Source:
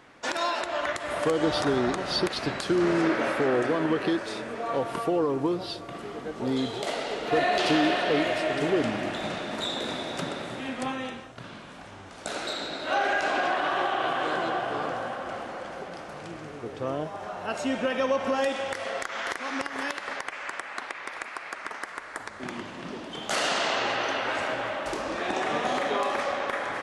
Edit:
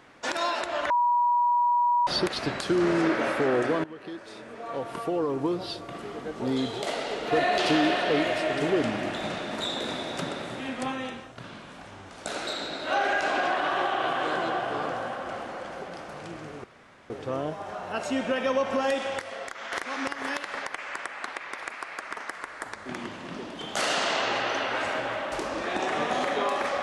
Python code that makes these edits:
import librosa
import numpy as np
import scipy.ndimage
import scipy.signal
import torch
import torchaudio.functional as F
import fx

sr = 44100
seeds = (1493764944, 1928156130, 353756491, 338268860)

y = fx.edit(x, sr, fx.bleep(start_s=0.9, length_s=1.17, hz=965.0, db=-19.5),
    fx.fade_in_from(start_s=3.84, length_s=1.83, floor_db=-20.0),
    fx.insert_room_tone(at_s=16.64, length_s=0.46),
    fx.clip_gain(start_s=18.75, length_s=0.51, db=-5.0), tone=tone)